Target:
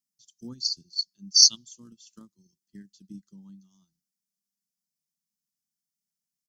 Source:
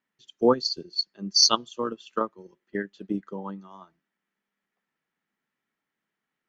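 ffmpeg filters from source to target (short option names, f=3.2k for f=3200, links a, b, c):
-af "firequalizer=gain_entry='entry(180,0);entry(470,-29);entry(1300,-25);entry(5100,14)':delay=0.05:min_phase=1,volume=-8dB"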